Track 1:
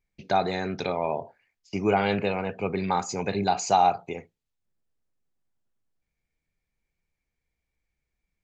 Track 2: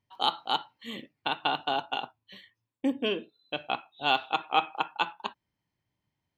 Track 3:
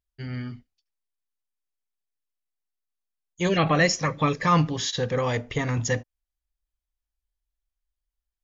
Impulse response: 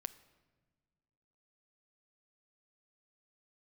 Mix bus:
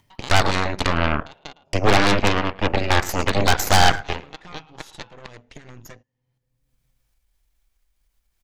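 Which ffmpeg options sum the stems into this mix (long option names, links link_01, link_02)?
-filter_complex "[0:a]agate=range=-39dB:threshold=-50dB:ratio=16:detection=peak,adynamicequalizer=threshold=0.0316:dfrequency=620:dqfactor=2.4:tfrequency=620:tqfactor=2.4:attack=5:release=100:ratio=0.375:range=1.5:mode=cutabove:tftype=bell,aeval=exprs='0.211*(abs(mod(val(0)/0.211+3,4)-2)-1)':channel_layout=same,volume=1.5dB,asplit=3[link_01][link_02][link_03];[link_02]volume=-4dB[link_04];[link_03]volume=-11dB[link_05];[1:a]flanger=delay=7.1:depth=2.6:regen=-75:speed=0.96:shape=sinusoidal,volume=-11.5dB,asplit=3[link_06][link_07][link_08];[link_06]atrim=end=1.53,asetpts=PTS-STARTPTS,afade=type=out:start_time=1.526:duration=0.004:curve=hsin[link_09];[link_07]atrim=start=1.53:end=2.91,asetpts=PTS-STARTPTS,volume=0[link_10];[link_08]atrim=start=2.91,asetpts=PTS-STARTPTS,afade=type=in:duration=0.004:curve=hsin[link_11];[link_09][link_10][link_11]concat=n=3:v=0:a=1,asplit=3[link_12][link_13][link_14];[link_13]volume=-7.5dB[link_15];[link_14]volume=-14.5dB[link_16];[2:a]acompressor=threshold=-26dB:ratio=4,volume=-17.5dB,asplit=2[link_17][link_18];[link_18]volume=-21dB[link_19];[3:a]atrim=start_sample=2205[link_20];[link_04][link_15][link_19]amix=inputs=3:normalize=0[link_21];[link_21][link_20]afir=irnorm=-1:irlink=0[link_22];[link_05][link_16]amix=inputs=2:normalize=0,aecho=0:1:108:1[link_23];[link_01][link_12][link_17][link_22][link_23]amix=inputs=5:normalize=0,acompressor=mode=upward:threshold=-27dB:ratio=2.5,aeval=exprs='0.447*(cos(1*acos(clip(val(0)/0.447,-1,1)))-cos(1*PI/2))+0.0891*(cos(3*acos(clip(val(0)/0.447,-1,1)))-cos(3*PI/2))+0.2*(cos(6*acos(clip(val(0)/0.447,-1,1)))-cos(6*PI/2))':channel_layout=same"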